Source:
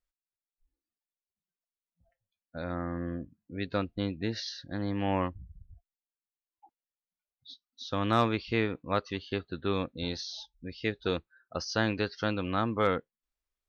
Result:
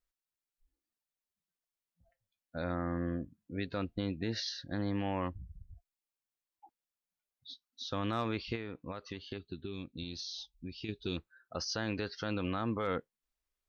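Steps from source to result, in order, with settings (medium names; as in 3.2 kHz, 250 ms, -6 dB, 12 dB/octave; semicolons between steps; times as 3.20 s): 9.38–11.18 s: time-frequency box 430–2200 Hz -13 dB; peak limiter -24.5 dBFS, peak gain reduction 10 dB; 8.55–10.89 s: compression, threshold -38 dBFS, peak gain reduction 8 dB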